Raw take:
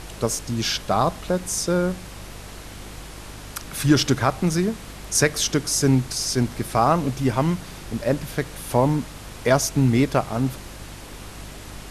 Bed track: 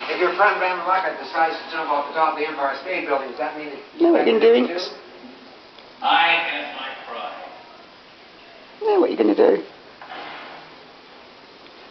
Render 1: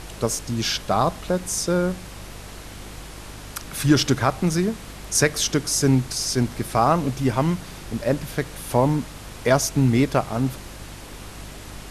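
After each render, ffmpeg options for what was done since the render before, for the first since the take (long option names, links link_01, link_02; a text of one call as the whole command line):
ffmpeg -i in.wav -af anull out.wav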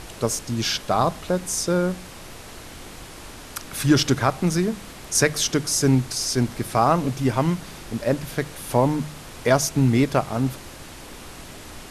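ffmpeg -i in.wav -af "bandreject=frequency=50:width_type=h:width=4,bandreject=frequency=100:width_type=h:width=4,bandreject=frequency=150:width_type=h:width=4,bandreject=frequency=200:width_type=h:width=4" out.wav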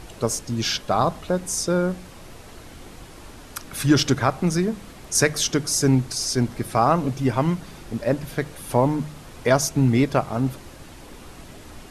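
ffmpeg -i in.wav -af "afftdn=noise_reduction=6:noise_floor=-40" out.wav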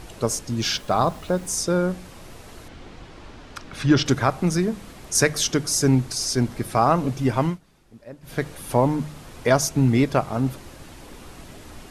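ffmpeg -i in.wav -filter_complex "[0:a]asettb=1/sr,asplit=3[link_01][link_02][link_03];[link_01]atrim=end=0.624[link_04];[link_02]atrim=start=0.62:end=1.54,asetpts=PTS-STARTPTS,afade=type=in:duration=0.004:curve=qsin,afade=type=out:start_time=0.916:duration=0.004:curve=qsin,acrusher=bits=7:mix=0:aa=0.5[link_05];[link_03]atrim=start=1.536[link_06];[link_04][link_05]acrossfade=duration=0.004:curve1=hsin:curve2=qsin[link_07];[link_07][link_06]acrossfade=duration=0.004:curve1=qsin:curve2=hsin,asettb=1/sr,asplit=3[link_08][link_09][link_10];[link_08]atrim=end=2.684[link_11];[link_09]atrim=start=2.68:end=4.06,asetpts=PTS-STARTPTS,afade=type=in:duration=0.004:curve=qsin,afade=type=out:start_time=1.376:duration=0.004:curve=qsin,lowpass=4600[link_12];[link_10]atrim=start=4.056[link_13];[link_11][link_12]acrossfade=duration=0.004:curve1=hsin:curve2=qsin[link_14];[link_14][link_13]acrossfade=duration=0.004:curve1=qsin:curve2=hsin,asplit=3[link_15][link_16][link_17];[link_15]atrim=end=7.59,asetpts=PTS-STARTPTS,afade=type=out:start_time=7.45:duration=0.14:silence=0.11885[link_18];[link_16]atrim=start=7.59:end=8.22,asetpts=PTS-STARTPTS,volume=-18.5dB[link_19];[link_17]atrim=start=8.22,asetpts=PTS-STARTPTS,afade=type=in:duration=0.14:silence=0.11885[link_20];[link_18][link_19][link_20]concat=n=3:v=0:a=1" out.wav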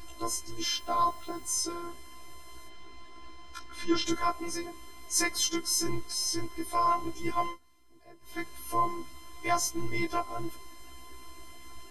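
ffmpeg -i in.wav -af "afftfilt=real='hypot(re,im)*cos(PI*b)':imag='0':win_size=512:overlap=0.75,afftfilt=real='re*1.73*eq(mod(b,3),0)':imag='im*1.73*eq(mod(b,3),0)':win_size=2048:overlap=0.75" out.wav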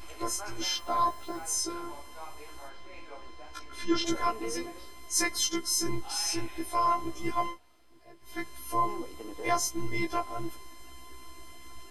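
ffmpeg -i in.wav -i bed.wav -filter_complex "[1:a]volume=-26.5dB[link_01];[0:a][link_01]amix=inputs=2:normalize=0" out.wav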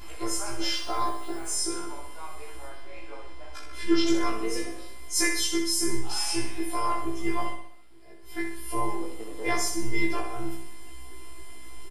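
ffmpeg -i in.wav -filter_complex "[0:a]asplit=2[link_01][link_02];[link_02]adelay=18,volume=-2dB[link_03];[link_01][link_03]amix=inputs=2:normalize=0,asplit=2[link_04][link_05];[link_05]aecho=0:1:63|126|189|252|315|378:0.501|0.256|0.13|0.0665|0.0339|0.0173[link_06];[link_04][link_06]amix=inputs=2:normalize=0" out.wav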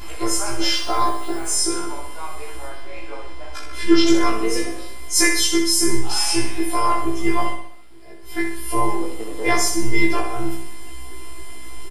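ffmpeg -i in.wav -af "volume=8.5dB" out.wav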